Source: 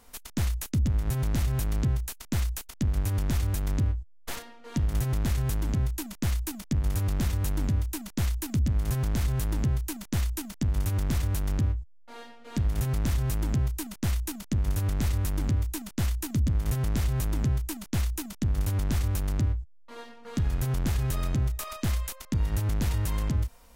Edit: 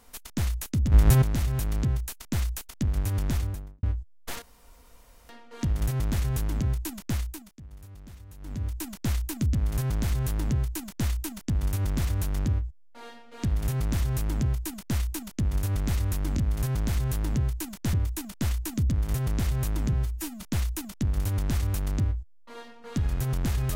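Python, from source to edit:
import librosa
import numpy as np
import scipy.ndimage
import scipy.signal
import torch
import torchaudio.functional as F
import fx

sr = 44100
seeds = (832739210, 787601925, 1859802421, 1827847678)

y = fx.studio_fade_out(x, sr, start_s=3.29, length_s=0.54)
y = fx.edit(y, sr, fx.clip_gain(start_s=0.92, length_s=0.3, db=10.0),
    fx.insert_room_tone(at_s=4.42, length_s=0.87),
    fx.fade_down_up(start_s=6.2, length_s=1.8, db=-19.0, fade_s=0.49),
    fx.duplicate(start_s=8.65, length_s=1.56, to_s=15.5),
    fx.stretch_span(start_s=17.5, length_s=0.32, factor=1.5), tone=tone)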